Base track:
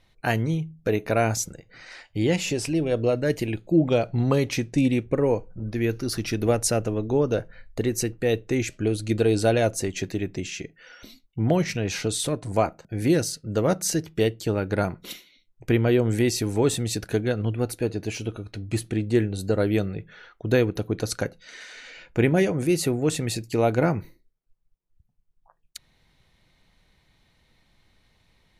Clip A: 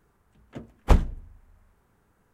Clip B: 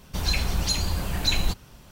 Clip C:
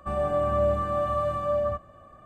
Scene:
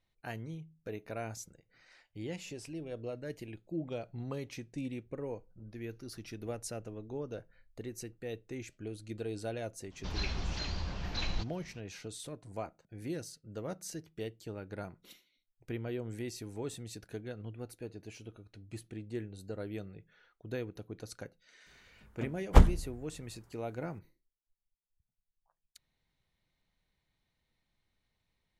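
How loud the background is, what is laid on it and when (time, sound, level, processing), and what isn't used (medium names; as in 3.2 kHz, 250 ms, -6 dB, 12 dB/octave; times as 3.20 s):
base track -18 dB
9.90 s: add B -10 dB, fades 0.02 s + CVSD coder 32 kbps
21.66 s: add A -1 dB + band-stop 2.5 kHz, Q 18
not used: C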